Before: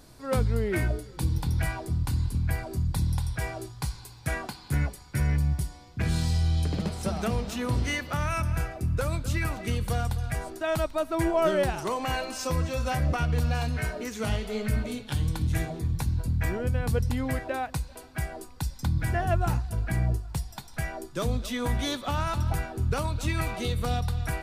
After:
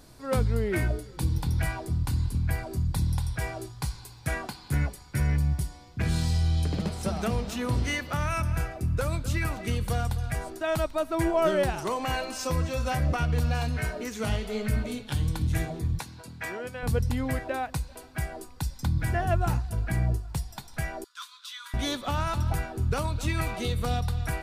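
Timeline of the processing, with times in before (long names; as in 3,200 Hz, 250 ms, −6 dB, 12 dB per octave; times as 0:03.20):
0:15.99–0:16.83: meter weighting curve A
0:21.04–0:21.74: Chebyshev high-pass with heavy ripple 1,000 Hz, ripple 9 dB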